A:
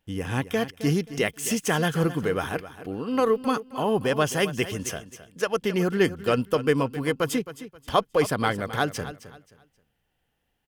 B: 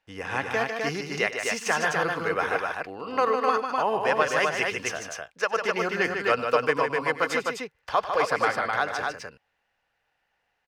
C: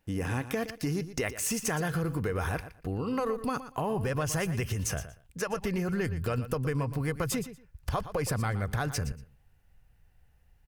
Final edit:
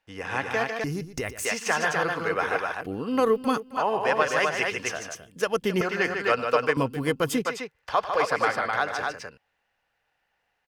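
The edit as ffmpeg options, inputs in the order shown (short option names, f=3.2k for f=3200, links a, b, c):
-filter_complex "[0:a]asplit=3[a][b][c];[1:a]asplit=5[d][e][f][g][h];[d]atrim=end=0.842[i];[2:a]atrim=start=0.838:end=1.452[j];[e]atrim=start=1.448:end=2.812[k];[a]atrim=start=2.808:end=3.772[l];[f]atrim=start=3.768:end=5.152[m];[b]atrim=start=5.148:end=5.812[n];[g]atrim=start=5.808:end=6.772[o];[c]atrim=start=6.768:end=7.452[p];[h]atrim=start=7.448[q];[i][j]acrossfade=d=0.004:c1=hsin:c2=hsin[r];[r][k]acrossfade=d=0.004:c1=hsin:c2=hsin[s];[s][l]acrossfade=d=0.004:c1=hsin:c2=hsin[t];[t][m]acrossfade=d=0.004:c1=hsin:c2=hsin[u];[u][n]acrossfade=d=0.004:c1=hsin:c2=hsin[v];[v][o]acrossfade=d=0.004:c1=hsin:c2=hsin[w];[w][p]acrossfade=d=0.004:c1=hsin:c2=hsin[x];[x][q]acrossfade=d=0.004:c1=hsin:c2=hsin"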